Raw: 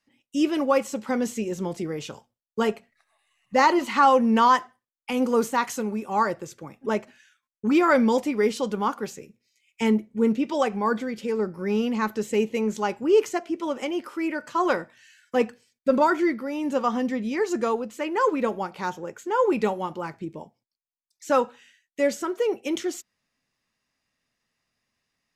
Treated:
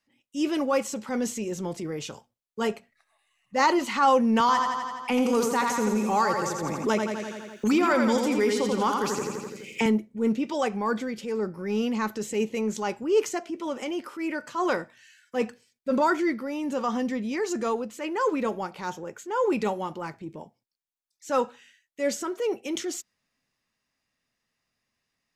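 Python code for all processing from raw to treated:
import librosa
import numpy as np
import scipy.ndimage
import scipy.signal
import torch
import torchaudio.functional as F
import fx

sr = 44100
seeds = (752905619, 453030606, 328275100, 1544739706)

y = fx.chain(x, sr, fx.echo_feedback(ms=84, feedback_pct=53, wet_db=-6.0),
    fx.band_squash(depth_pct=100), at=(4.4, 9.86))
y = fx.dynamic_eq(y, sr, hz=6500.0, q=0.84, threshold_db=-47.0, ratio=4.0, max_db=4)
y = fx.transient(y, sr, attack_db=-6, sustain_db=1)
y = y * 10.0 ** (-1.5 / 20.0)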